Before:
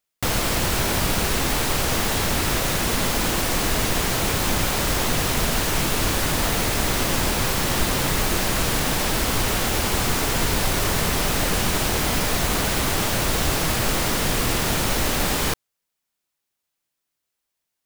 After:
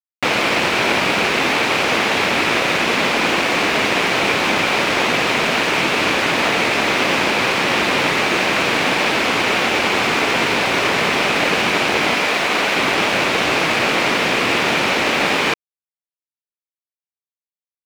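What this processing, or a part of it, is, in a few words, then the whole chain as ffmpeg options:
pocket radio on a weak battery: -filter_complex "[0:a]asettb=1/sr,asplit=3[a][b][c];[a]atrim=end=12.144[d];[b]atrim=start=12.14:end=12.76,asetpts=PTS-STARTPTS,afade=t=in:d=0.004:c=qsin,afade=t=out:st=0.616:d=0.004:c=qsin,highpass=f=270:p=1[e];[c]atrim=start=12.756[f];[d][e]acrossfade=d=0.004:c1=hsin:c2=qsin[g];[g][f]acrossfade=d=0.004:c1=qsin:c2=hsin,highpass=260,lowpass=3.7k,aeval=exprs='sgn(val(0))*max(abs(val(0))-0.00944,0)':c=same,equalizer=f=2.4k:t=o:w=0.45:g=7,volume=9dB"

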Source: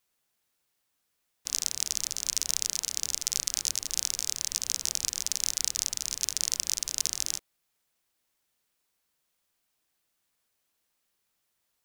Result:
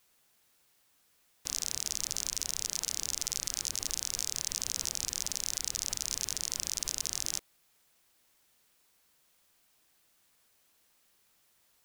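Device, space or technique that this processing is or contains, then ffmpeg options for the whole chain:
stacked limiters: -af "alimiter=limit=-9.5dB:level=0:latency=1:release=17,alimiter=limit=-16dB:level=0:latency=1:release=68,alimiter=limit=-20.5dB:level=0:latency=1:release=33,volume=8.5dB"

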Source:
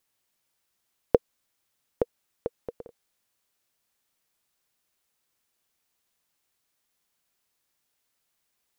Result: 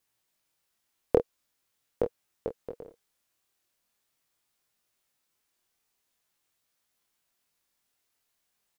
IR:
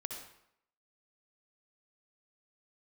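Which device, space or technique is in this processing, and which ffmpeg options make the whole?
double-tracked vocal: -filter_complex "[0:a]asplit=2[a][b];[b]adelay=27,volume=-8dB[c];[a][c]amix=inputs=2:normalize=0,flanger=delay=17.5:depth=7:speed=0.43,volume=1.5dB"

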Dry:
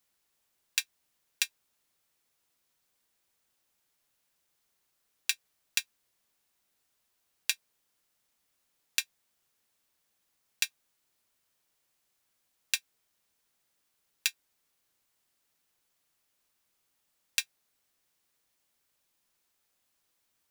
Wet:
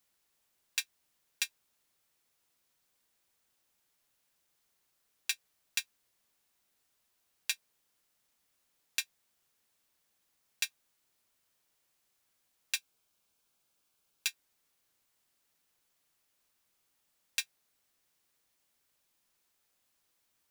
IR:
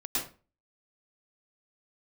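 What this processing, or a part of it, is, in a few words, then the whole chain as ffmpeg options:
soft clipper into limiter: -filter_complex "[0:a]asoftclip=type=tanh:threshold=-5.5dB,alimiter=limit=-12.5dB:level=0:latency=1:release=13,asettb=1/sr,asplit=3[a][b][c];[a]atrim=end=12.764[d];[b]atrim=start=12.76:end=14.27,asetpts=PTS-STARTPTS,afade=t=in:d=0.004:c=qsin,afade=t=out:st=1.506:d=0.004:c=qsin,bandreject=f=1.9k:w=5.2[e];[c]atrim=start=14.266[f];[d][e]acrossfade=d=0.004:c1=hsin:c2=qsin[g];[g][f]acrossfade=d=0.004:c1=qsin:c2=hsin"

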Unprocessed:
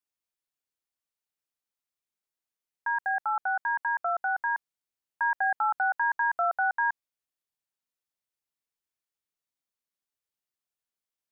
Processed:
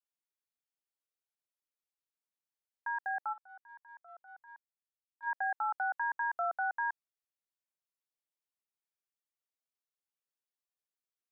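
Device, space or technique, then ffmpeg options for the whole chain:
filter by subtraction: -filter_complex "[0:a]asplit=3[a][b][c];[a]afade=t=out:st=3.32:d=0.02[d];[b]agate=range=-22dB:threshold=-24dB:ratio=16:detection=peak,afade=t=in:st=3.32:d=0.02,afade=t=out:st=5.26:d=0.02[e];[c]afade=t=in:st=5.26:d=0.02[f];[d][e][f]amix=inputs=3:normalize=0,asplit=2[g][h];[h]lowpass=480,volume=-1[i];[g][i]amix=inputs=2:normalize=0,volume=-8.5dB"

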